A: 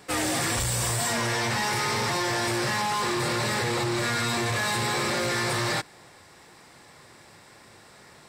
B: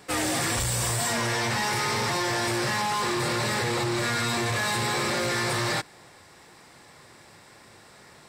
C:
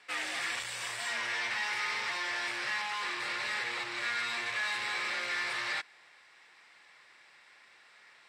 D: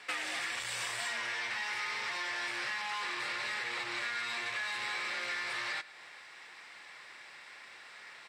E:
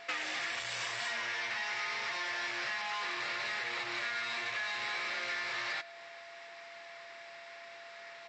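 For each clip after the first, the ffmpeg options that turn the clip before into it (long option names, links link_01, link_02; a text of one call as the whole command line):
ffmpeg -i in.wav -af anull out.wav
ffmpeg -i in.wav -af "bandpass=frequency=2300:width_type=q:width=1.4:csg=0,volume=-1.5dB" out.wav
ffmpeg -i in.wav -af "acompressor=threshold=-41dB:ratio=12,aecho=1:1:109:0.126,volume=7.5dB" out.wav
ffmpeg -i in.wav -af "aeval=exprs='val(0)+0.00282*sin(2*PI*680*n/s)':channel_layout=same,aresample=16000,aresample=44100" out.wav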